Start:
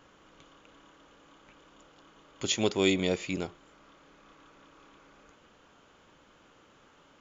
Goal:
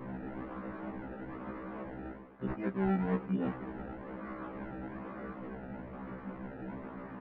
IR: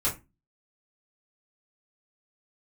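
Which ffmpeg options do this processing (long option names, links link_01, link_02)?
-filter_complex "[0:a]equalizer=frequency=210:width=1.7:gain=13.5,areverse,acompressor=threshold=-44dB:ratio=8,areverse,asplit=2[link_01][link_02];[link_02]adelay=332.4,volume=-17dB,highshelf=frequency=4000:gain=-7.48[link_03];[link_01][link_03]amix=inputs=2:normalize=0,aresample=16000,acrusher=samples=10:mix=1:aa=0.000001:lfo=1:lforange=10:lforate=1.1,aresample=44100,lowpass=frequency=1900:width=0.5412,lowpass=frequency=1900:width=1.3066,afftfilt=real='re*1.73*eq(mod(b,3),0)':imag='im*1.73*eq(mod(b,3),0)':win_size=2048:overlap=0.75,volume=15.5dB"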